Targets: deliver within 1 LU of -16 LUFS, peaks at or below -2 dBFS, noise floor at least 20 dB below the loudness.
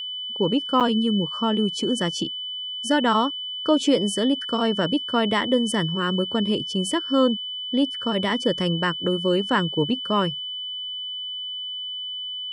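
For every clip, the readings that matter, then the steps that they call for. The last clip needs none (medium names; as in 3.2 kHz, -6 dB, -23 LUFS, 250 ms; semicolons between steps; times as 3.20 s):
dropouts 1; longest dropout 7.7 ms; steady tone 3 kHz; tone level -29 dBFS; loudness -23.5 LUFS; peak level -8.0 dBFS; loudness target -16.0 LUFS
-> interpolate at 0.80 s, 7.7 ms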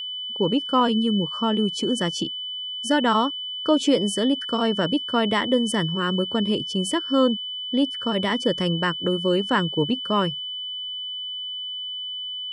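dropouts 0; steady tone 3 kHz; tone level -29 dBFS
-> band-stop 3 kHz, Q 30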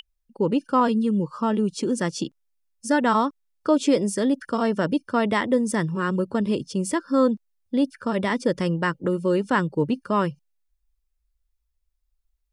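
steady tone not found; loudness -24.0 LUFS; peak level -8.5 dBFS; loudness target -16.0 LUFS
-> trim +8 dB; peak limiter -2 dBFS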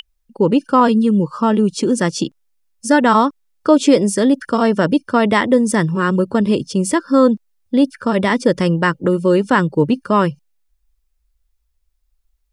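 loudness -16.0 LUFS; peak level -2.0 dBFS; noise floor -67 dBFS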